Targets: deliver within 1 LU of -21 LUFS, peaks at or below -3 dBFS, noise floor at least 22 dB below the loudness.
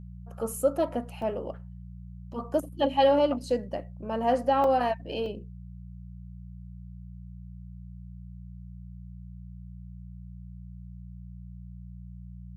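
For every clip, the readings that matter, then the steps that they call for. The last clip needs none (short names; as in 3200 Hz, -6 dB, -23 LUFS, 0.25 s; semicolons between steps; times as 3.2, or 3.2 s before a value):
dropouts 3; longest dropout 2.2 ms; hum 60 Hz; harmonics up to 180 Hz; hum level -40 dBFS; loudness -28.0 LUFS; peak -12.0 dBFS; loudness target -21.0 LUFS
-> interpolate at 1.22/4.64/5.26, 2.2 ms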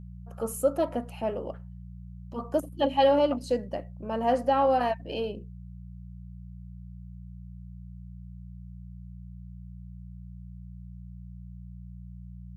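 dropouts 0; hum 60 Hz; harmonics up to 180 Hz; hum level -40 dBFS
-> de-hum 60 Hz, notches 3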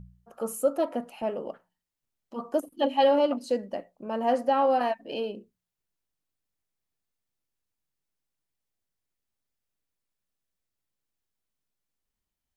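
hum none; loudness -27.5 LUFS; peak -12.5 dBFS; loudness target -21.0 LUFS
-> gain +6.5 dB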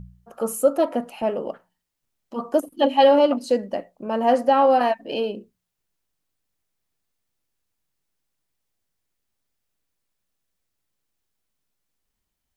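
loudness -21.0 LUFS; peak -6.0 dBFS; noise floor -80 dBFS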